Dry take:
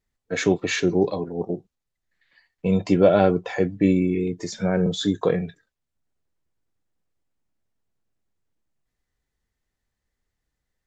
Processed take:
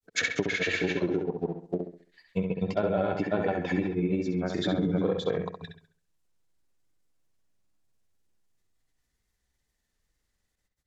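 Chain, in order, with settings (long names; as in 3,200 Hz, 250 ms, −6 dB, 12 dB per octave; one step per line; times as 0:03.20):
in parallel at −12 dB: dead-zone distortion −40.5 dBFS
on the sum: granular cloud, spray 395 ms, pitch spread up and down by 0 semitones
downward compressor 6 to 1, threshold −25 dBFS, peak gain reduction 13.5 dB
treble cut that deepens with the level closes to 2,400 Hz, closed at −25.5 dBFS
high-shelf EQ 3,400 Hz +9 dB
on a send: feedback echo with a low-pass in the loop 67 ms, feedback 37%, low-pass 4,100 Hz, level −5 dB
on the sum: tape wow and flutter 29 cents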